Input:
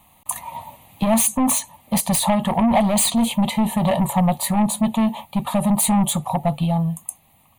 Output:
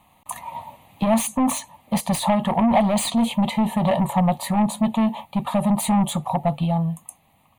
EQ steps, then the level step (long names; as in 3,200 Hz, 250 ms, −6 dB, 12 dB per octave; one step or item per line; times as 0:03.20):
low-shelf EQ 110 Hz −5.5 dB
high-shelf EQ 5,400 Hz −11 dB
0.0 dB